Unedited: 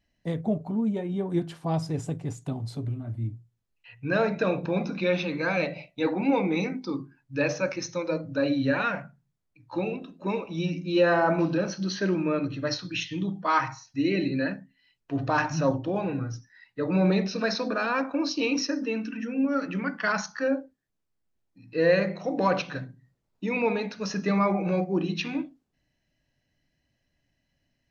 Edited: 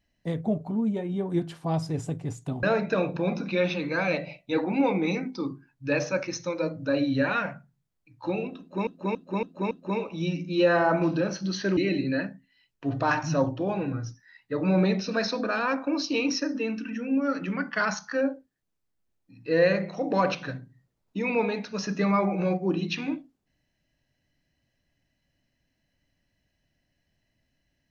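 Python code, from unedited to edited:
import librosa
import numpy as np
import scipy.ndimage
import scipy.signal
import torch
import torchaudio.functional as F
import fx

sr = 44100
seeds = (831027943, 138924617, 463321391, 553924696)

y = fx.edit(x, sr, fx.cut(start_s=2.63, length_s=1.49),
    fx.repeat(start_s=10.08, length_s=0.28, count=5),
    fx.cut(start_s=12.14, length_s=1.9), tone=tone)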